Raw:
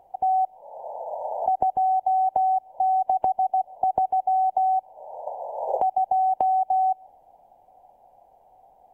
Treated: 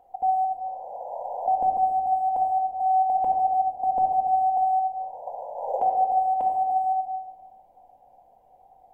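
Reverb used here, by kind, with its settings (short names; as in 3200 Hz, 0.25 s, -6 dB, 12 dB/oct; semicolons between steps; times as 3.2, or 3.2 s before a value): shoebox room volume 1400 m³, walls mixed, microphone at 2 m; gain -5 dB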